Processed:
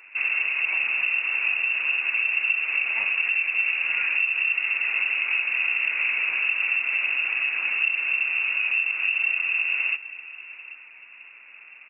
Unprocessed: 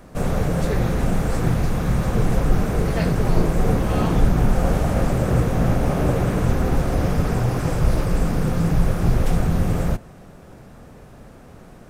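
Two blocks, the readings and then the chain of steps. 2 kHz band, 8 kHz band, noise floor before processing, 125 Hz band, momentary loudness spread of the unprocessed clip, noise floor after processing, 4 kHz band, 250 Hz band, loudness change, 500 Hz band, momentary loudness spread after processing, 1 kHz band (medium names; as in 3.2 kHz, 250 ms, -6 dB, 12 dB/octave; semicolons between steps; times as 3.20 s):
+14.5 dB, under -40 dB, -44 dBFS, under -40 dB, 2 LU, -47 dBFS, +6.5 dB, under -35 dB, -0.5 dB, under -25 dB, 2 LU, -13.5 dB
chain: frequency inversion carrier 2.7 kHz; high-pass 450 Hz 6 dB/octave; delay 788 ms -19.5 dB; compression, threshold -16 dBFS, peak gain reduction 9 dB; flange 1.5 Hz, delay 2 ms, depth 3.7 ms, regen -64%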